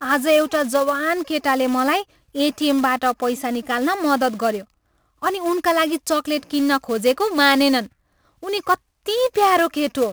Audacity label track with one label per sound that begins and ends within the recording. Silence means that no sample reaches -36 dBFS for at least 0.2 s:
2.350000	4.620000	sound
5.220000	7.860000	sound
8.430000	8.750000	sound